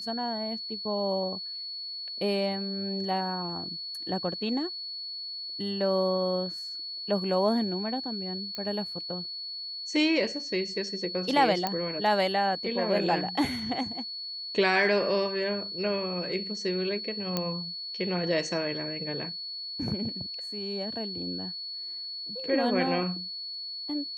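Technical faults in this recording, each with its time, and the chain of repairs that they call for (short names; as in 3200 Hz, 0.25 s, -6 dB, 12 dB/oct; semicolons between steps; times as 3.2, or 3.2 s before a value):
tone 4400 Hz -35 dBFS
8.55 pop -21 dBFS
11.67 pop -13 dBFS
17.37 pop -13 dBFS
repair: de-click; notch 4400 Hz, Q 30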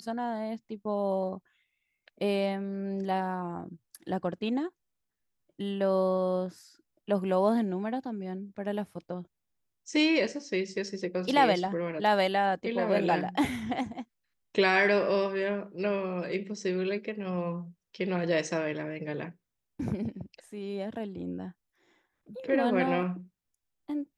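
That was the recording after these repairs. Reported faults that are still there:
11.67 pop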